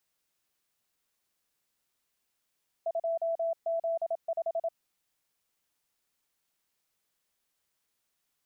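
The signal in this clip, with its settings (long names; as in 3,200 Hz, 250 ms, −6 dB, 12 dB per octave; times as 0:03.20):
Morse code "2Z5" 27 words per minute 664 Hz −27 dBFS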